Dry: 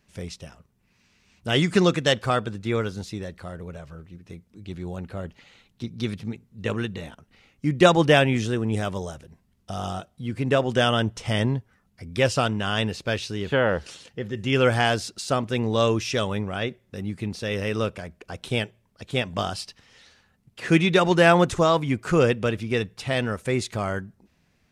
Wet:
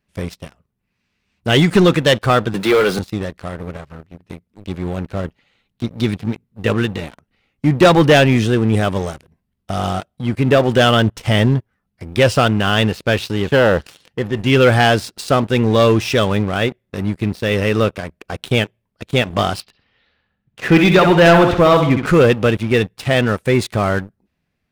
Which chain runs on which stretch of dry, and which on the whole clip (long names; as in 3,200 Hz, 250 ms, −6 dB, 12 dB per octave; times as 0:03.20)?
0:02.54–0:02.99: high-pass filter 190 Hz 24 dB per octave + parametric band 240 Hz −9 dB 0.69 octaves + power curve on the samples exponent 0.5
0:19.60–0:22.06: low-pass filter 3,900 Hz 24 dB per octave + repeating echo 65 ms, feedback 44%, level −8.5 dB
whole clip: parametric band 6,500 Hz −7 dB 0.9 octaves; notch filter 940 Hz, Q 28; leveller curve on the samples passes 3; level −1 dB